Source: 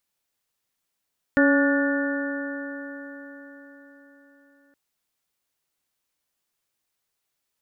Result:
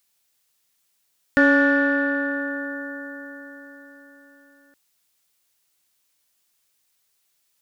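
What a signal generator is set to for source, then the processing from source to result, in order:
stiff-string partials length 3.37 s, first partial 279 Hz, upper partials −4/−17/−17.5/−6/−5.5 dB, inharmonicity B 0.0032, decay 4.59 s, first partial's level −16.5 dB
in parallel at −10 dB: soft clipping −21.5 dBFS
on the sum: high-shelf EQ 2,100 Hz +9 dB

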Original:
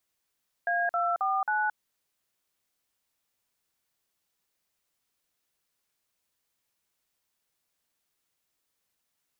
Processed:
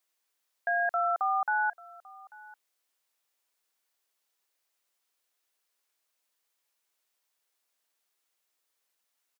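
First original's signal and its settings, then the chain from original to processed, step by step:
touch tones "A249", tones 222 ms, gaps 47 ms, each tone −27 dBFS
high-pass filter 400 Hz 12 dB per octave
single-tap delay 841 ms −22 dB

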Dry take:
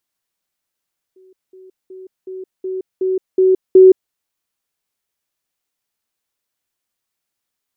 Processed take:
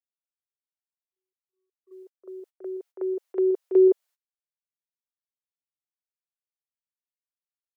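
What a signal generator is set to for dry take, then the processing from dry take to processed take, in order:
level staircase 375 Hz −44.5 dBFS, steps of 6 dB, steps 8, 0.17 s 0.20 s
noise gate −38 dBFS, range −37 dB
high-pass filter 510 Hz 24 dB per octave
on a send: backwards echo 40 ms −10.5 dB

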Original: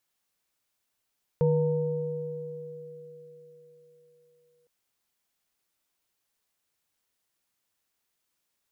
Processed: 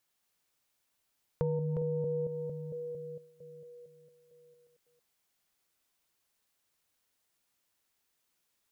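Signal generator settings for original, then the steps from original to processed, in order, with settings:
inharmonic partials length 3.26 s, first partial 153 Hz, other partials 483/916 Hz, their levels 0.5/−16.5 dB, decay 3.28 s, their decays 4.45/1.80 s, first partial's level −22 dB
delay that plays each chunk backwards 227 ms, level −5.5 dB
downward compressor 3 to 1, threshold −31 dBFS

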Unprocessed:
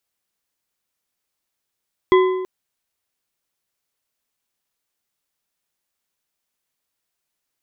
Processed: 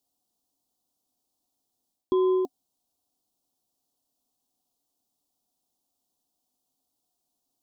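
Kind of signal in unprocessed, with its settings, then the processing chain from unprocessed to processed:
struck metal bar, length 0.33 s, lowest mode 372 Hz, modes 4, decay 1.16 s, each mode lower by 6.5 dB, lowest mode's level −8.5 dB
reversed playback
downward compressor 12 to 1, threshold −22 dBFS
reversed playback
Butterworth band-reject 1,900 Hz, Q 0.72
hollow resonant body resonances 270/730 Hz, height 12 dB, ringing for 50 ms

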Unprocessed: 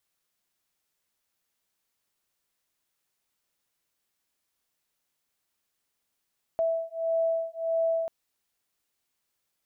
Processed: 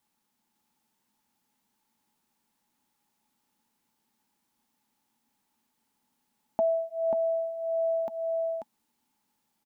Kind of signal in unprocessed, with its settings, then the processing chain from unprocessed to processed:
two tones that beat 657 Hz, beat 1.6 Hz, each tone −28 dBFS 1.49 s
hollow resonant body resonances 230/850 Hz, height 18 dB, ringing for 40 ms
on a send: single-tap delay 538 ms −5 dB

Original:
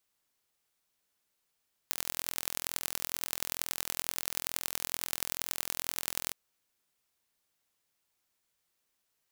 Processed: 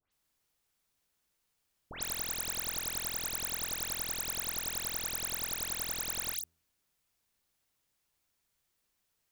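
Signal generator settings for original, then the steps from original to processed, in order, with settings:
impulse train 42.2 per second, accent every 4, −3 dBFS 4.43 s
low-shelf EQ 140 Hz +9.5 dB
hum removal 82.57 Hz, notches 8
all-pass dispersion highs, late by 121 ms, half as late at 2,500 Hz

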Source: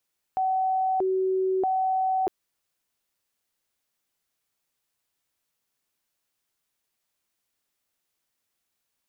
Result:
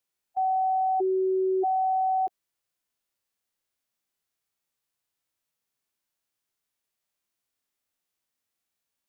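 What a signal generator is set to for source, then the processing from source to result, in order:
siren hi-lo 377–756 Hz 0.79 per second sine −21.5 dBFS 1.91 s
harmonic and percussive parts rebalanced percussive −16 dB

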